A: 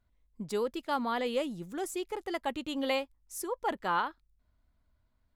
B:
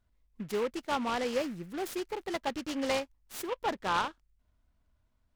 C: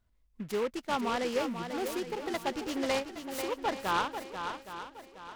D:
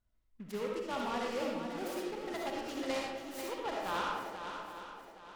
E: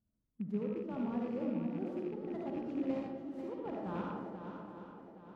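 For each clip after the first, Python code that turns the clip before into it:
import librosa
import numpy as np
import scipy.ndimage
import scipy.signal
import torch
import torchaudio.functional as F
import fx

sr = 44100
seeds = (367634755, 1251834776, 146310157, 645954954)

y1 = fx.noise_mod_delay(x, sr, seeds[0], noise_hz=1700.0, depth_ms=0.054)
y2 = fx.echo_swing(y1, sr, ms=818, ratio=1.5, feedback_pct=32, wet_db=-8)
y3 = fx.rev_freeverb(y2, sr, rt60_s=0.9, hf_ratio=0.6, predelay_ms=25, drr_db=-1.5)
y3 = y3 * 10.0 ** (-8.0 / 20.0)
y4 = fx.rattle_buzz(y3, sr, strikes_db=-46.0, level_db=-30.0)
y4 = fx.rider(y4, sr, range_db=4, speed_s=2.0)
y4 = fx.bandpass_q(y4, sr, hz=190.0, q=1.8)
y4 = y4 * 10.0 ** (9.0 / 20.0)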